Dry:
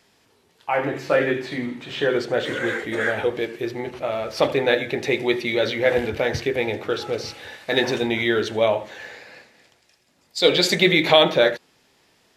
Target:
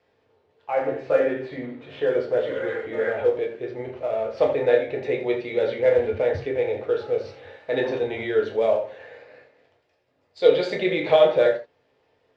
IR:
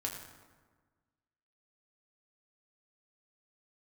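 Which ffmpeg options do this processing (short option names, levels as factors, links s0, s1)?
-filter_complex "[0:a]equalizer=f=125:t=o:w=1:g=4,equalizer=f=250:t=o:w=1:g=-4,equalizer=f=500:t=o:w=1:g=12,acrossover=split=530[s0][s1];[s1]acrusher=bits=5:mode=log:mix=0:aa=0.000001[s2];[s0][s2]amix=inputs=2:normalize=0,lowpass=3000[s3];[1:a]atrim=start_sample=2205,atrim=end_sample=3969,asetrate=41895,aresample=44100[s4];[s3][s4]afir=irnorm=-1:irlink=0,volume=0.355"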